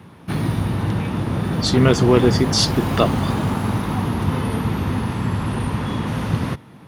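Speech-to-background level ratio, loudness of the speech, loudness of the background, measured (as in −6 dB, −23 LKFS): 4.0 dB, −18.5 LKFS, −22.5 LKFS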